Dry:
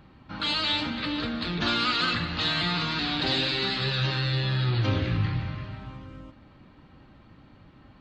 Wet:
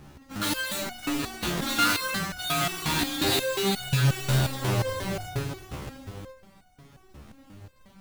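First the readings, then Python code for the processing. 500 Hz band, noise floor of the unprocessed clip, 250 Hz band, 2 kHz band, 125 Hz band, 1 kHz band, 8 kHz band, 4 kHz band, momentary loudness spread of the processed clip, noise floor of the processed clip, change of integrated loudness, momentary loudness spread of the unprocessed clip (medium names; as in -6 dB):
+4.0 dB, -54 dBFS, 0.0 dB, -0.5 dB, -0.5 dB, +1.0 dB, no reading, -3.5 dB, 15 LU, -56 dBFS, -0.5 dB, 13 LU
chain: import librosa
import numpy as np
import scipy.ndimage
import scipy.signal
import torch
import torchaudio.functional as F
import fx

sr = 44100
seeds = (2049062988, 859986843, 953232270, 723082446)

y = fx.halfwave_hold(x, sr)
y = fx.resonator_held(y, sr, hz=5.6, low_hz=72.0, high_hz=730.0)
y = y * librosa.db_to_amplitude(8.5)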